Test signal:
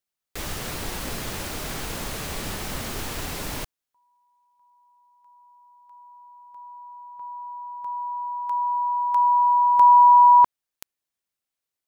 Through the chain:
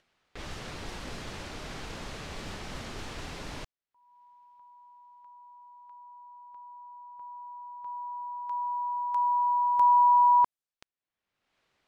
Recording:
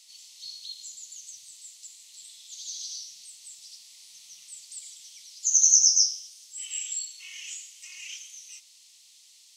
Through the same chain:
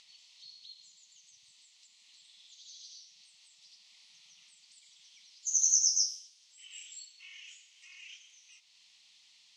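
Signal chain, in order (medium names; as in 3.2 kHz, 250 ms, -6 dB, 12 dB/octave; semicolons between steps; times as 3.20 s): upward compressor, threshold -36 dBFS; level-controlled noise filter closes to 2.9 kHz, open at -19 dBFS; trim -7.5 dB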